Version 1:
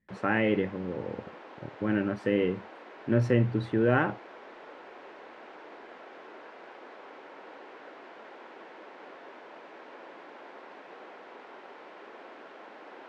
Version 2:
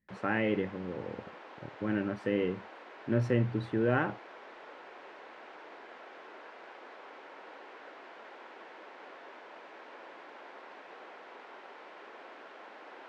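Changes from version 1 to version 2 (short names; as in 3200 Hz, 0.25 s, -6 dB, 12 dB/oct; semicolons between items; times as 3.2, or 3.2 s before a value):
speech -4.0 dB; background: add low shelf 440 Hz -7.5 dB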